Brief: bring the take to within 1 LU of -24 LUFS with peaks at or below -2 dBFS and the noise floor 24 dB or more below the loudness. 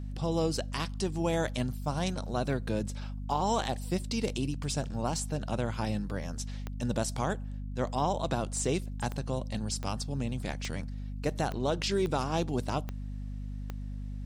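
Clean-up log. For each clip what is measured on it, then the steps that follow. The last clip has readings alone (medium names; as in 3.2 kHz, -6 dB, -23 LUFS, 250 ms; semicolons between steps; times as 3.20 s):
clicks found 8; hum 50 Hz; highest harmonic 250 Hz; hum level -35 dBFS; loudness -33.0 LUFS; peak level -17.0 dBFS; loudness target -24.0 LUFS
-> de-click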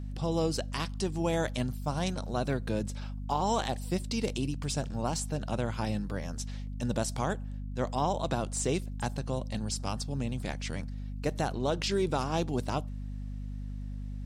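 clicks found 0; hum 50 Hz; highest harmonic 250 Hz; hum level -35 dBFS
-> de-hum 50 Hz, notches 5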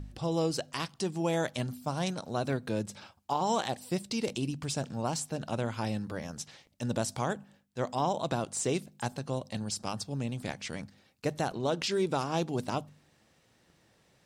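hum not found; loudness -33.5 LUFS; peak level -17.5 dBFS; loudness target -24.0 LUFS
-> trim +9.5 dB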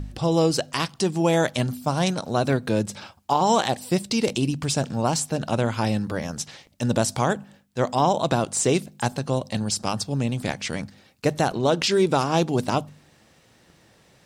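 loudness -24.0 LUFS; peak level -8.0 dBFS; noise floor -58 dBFS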